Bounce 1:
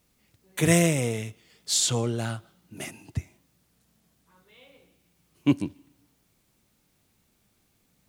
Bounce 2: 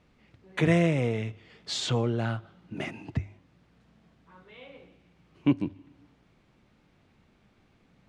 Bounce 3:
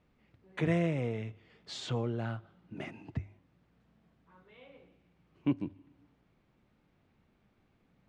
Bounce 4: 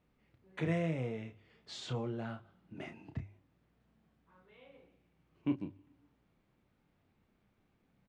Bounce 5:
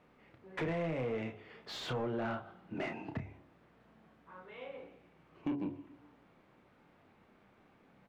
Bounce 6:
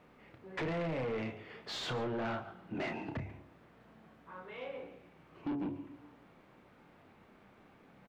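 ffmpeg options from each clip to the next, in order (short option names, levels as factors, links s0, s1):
-af "lowpass=2600,bandreject=f=50:t=h:w=6,bandreject=f=100:t=h:w=6,acompressor=threshold=0.00708:ratio=1.5,volume=2.37"
-af "highshelf=f=3400:g=-7,volume=0.473"
-filter_complex "[0:a]asplit=2[s0][s1];[s1]adelay=31,volume=0.422[s2];[s0][s2]amix=inputs=2:normalize=0,volume=0.596"
-filter_complex "[0:a]bandreject=f=70.7:t=h:w=4,bandreject=f=141.4:t=h:w=4,bandreject=f=212.1:t=h:w=4,bandreject=f=282.8:t=h:w=4,bandreject=f=353.5:t=h:w=4,bandreject=f=424.2:t=h:w=4,bandreject=f=494.9:t=h:w=4,bandreject=f=565.6:t=h:w=4,bandreject=f=636.3:t=h:w=4,bandreject=f=707:t=h:w=4,bandreject=f=777.7:t=h:w=4,bandreject=f=848.4:t=h:w=4,bandreject=f=919.1:t=h:w=4,bandreject=f=989.8:t=h:w=4,acompressor=threshold=0.0112:ratio=5,asplit=2[s0][s1];[s1]highpass=f=720:p=1,volume=8.91,asoftclip=type=tanh:threshold=0.0299[s2];[s0][s2]amix=inputs=2:normalize=0,lowpass=f=1100:p=1,volume=0.501,volume=1.78"
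-af "asoftclip=type=tanh:threshold=0.0158,aecho=1:1:142:0.126,volume=1.58"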